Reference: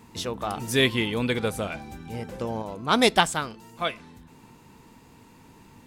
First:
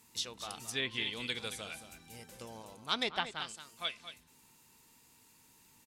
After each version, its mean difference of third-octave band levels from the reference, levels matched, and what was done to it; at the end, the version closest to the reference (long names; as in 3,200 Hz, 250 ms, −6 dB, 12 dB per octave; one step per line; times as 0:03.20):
7.0 dB: first-order pre-emphasis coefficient 0.9
on a send: single-tap delay 224 ms −11.5 dB
on the sum: treble cut that deepens with the level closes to 1,900 Hz, closed at −27.5 dBFS
dynamic equaliser 3,800 Hz, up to +4 dB, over −52 dBFS, Q 1.2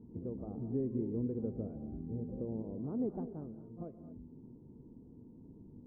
15.0 dB: echo ahead of the sound 41 ms −16 dB
downward compressor 2 to 1, threshold −35 dBFS, peak gain reduction 12 dB
transistor ladder low-pass 460 Hz, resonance 25%
reverb whose tail is shaped and stops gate 260 ms rising, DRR 10 dB
level +3 dB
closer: first